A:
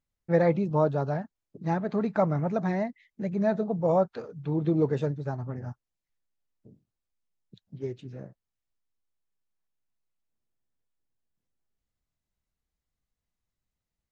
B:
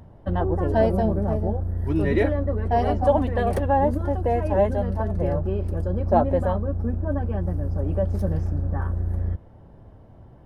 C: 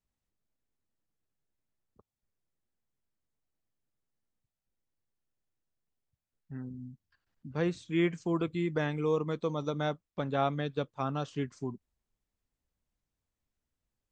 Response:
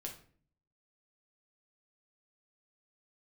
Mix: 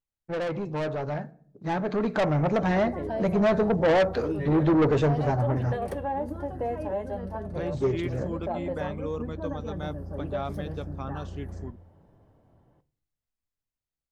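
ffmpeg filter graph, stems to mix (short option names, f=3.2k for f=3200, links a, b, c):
-filter_complex "[0:a]equalizer=f=170:w=3:g=-7,agate=range=-10dB:threshold=-44dB:ratio=16:detection=peak,volume=-0.5dB,asplit=2[a][b];[b]volume=-6.5dB[c];[1:a]alimiter=limit=-14.5dB:level=0:latency=1:release=174,lowshelf=f=86:g=-11.5,adelay=2350,volume=-17.5dB,asplit=2[d][e];[e]volume=-5dB[f];[2:a]volume=-13.5dB[g];[3:a]atrim=start_sample=2205[h];[c][f]amix=inputs=2:normalize=0[i];[i][h]afir=irnorm=-1:irlink=0[j];[a][d][g][j]amix=inputs=4:normalize=0,asoftclip=type=tanh:threshold=-27dB,dynaudnorm=f=240:g=17:m=9.5dB"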